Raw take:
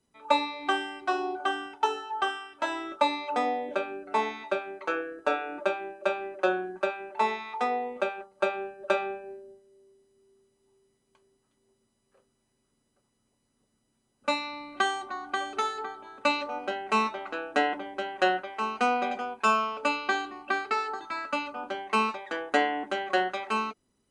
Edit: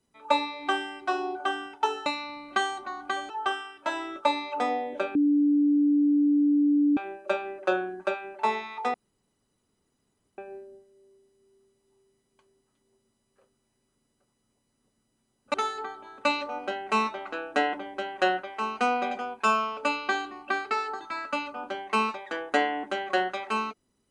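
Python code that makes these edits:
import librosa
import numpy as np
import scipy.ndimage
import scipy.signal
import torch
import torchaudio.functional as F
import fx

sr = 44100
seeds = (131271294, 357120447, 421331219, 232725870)

y = fx.edit(x, sr, fx.bleep(start_s=3.91, length_s=1.82, hz=291.0, db=-18.5),
    fx.room_tone_fill(start_s=7.7, length_s=1.44),
    fx.move(start_s=14.3, length_s=1.24, to_s=2.06), tone=tone)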